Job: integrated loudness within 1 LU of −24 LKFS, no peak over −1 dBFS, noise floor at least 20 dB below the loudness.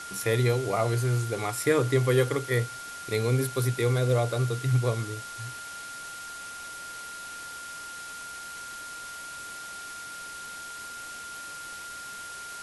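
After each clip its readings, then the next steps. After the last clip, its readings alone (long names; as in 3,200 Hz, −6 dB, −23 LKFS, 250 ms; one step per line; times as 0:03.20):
interfering tone 1,400 Hz; level of the tone −39 dBFS; background noise floor −40 dBFS; target noise floor −50 dBFS; integrated loudness −30.0 LKFS; sample peak −11.5 dBFS; target loudness −24.0 LKFS
→ notch filter 1,400 Hz, Q 30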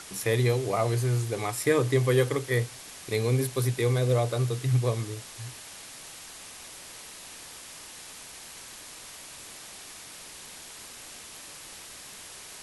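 interfering tone none found; background noise floor −45 dBFS; target noise floor −47 dBFS
→ noise reduction from a noise print 6 dB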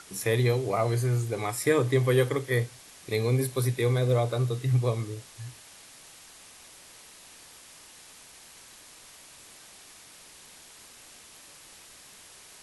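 background noise floor −51 dBFS; integrated loudness −27.0 LKFS; sample peak −11.5 dBFS; target loudness −24.0 LKFS
→ level +3 dB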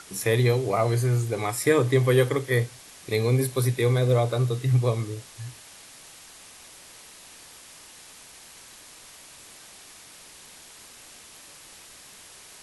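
integrated loudness −24.0 LKFS; sample peak −8.5 dBFS; background noise floor −48 dBFS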